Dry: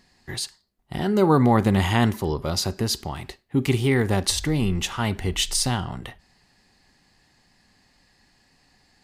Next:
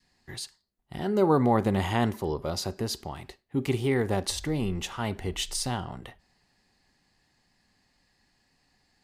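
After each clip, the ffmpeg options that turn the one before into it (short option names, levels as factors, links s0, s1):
-af "adynamicequalizer=threshold=0.0251:dfrequency=550:dqfactor=0.73:tfrequency=550:tqfactor=0.73:attack=5:release=100:ratio=0.375:range=3:mode=boostabove:tftype=bell,volume=0.398"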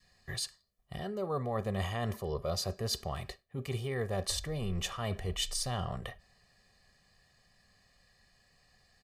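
-af "areverse,acompressor=threshold=0.0224:ratio=5,areverse,aecho=1:1:1.7:0.73"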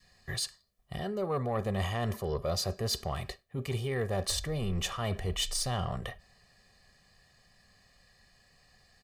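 -af "asoftclip=type=tanh:threshold=0.0531,volume=1.5"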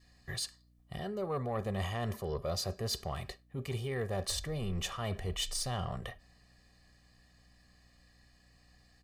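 -af "aeval=exprs='val(0)+0.000891*(sin(2*PI*60*n/s)+sin(2*PI*2*60*n/s)/2+sin(2*PI*3*60*n/s)/3+sin(2*PI*4*60*n/s)/4+sin(2*PI*5*60*n/s)/5)':c=same,volume=0.668"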